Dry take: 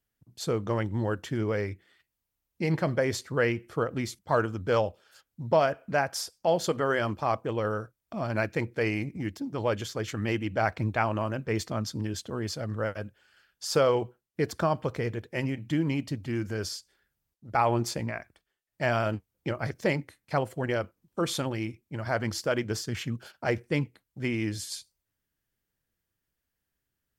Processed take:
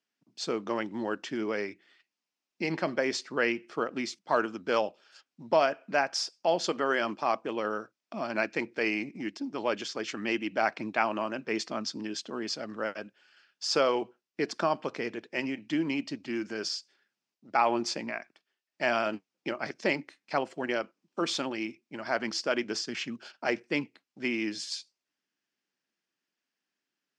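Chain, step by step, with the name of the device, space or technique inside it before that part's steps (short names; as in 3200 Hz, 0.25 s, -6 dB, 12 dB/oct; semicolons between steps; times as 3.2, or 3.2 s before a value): television speaker (speaker cabinet 220–6900 Hz, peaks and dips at 490 Hz -5 dB, 2600 Hz +5 dB, 5100 Hz +5 dB)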